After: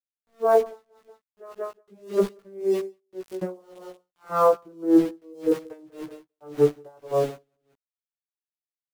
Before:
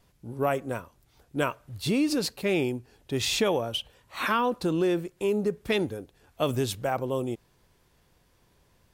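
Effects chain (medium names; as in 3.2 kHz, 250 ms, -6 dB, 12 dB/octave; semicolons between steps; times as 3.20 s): vocoder on a note that slides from A#3, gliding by -11 st; low-pass 3 kHz 12 dB/octave; high-order bell 690 Hz +14.5 dB 2.6 oct; small samples zeroed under -30 dBFS; doubling 16 ms -2.5 dB; feedback delay 185 ms, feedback 17%, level -14.5 dB; logarithmic tremolo 1.8 Hz, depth 32 dB; trim -2.5 dB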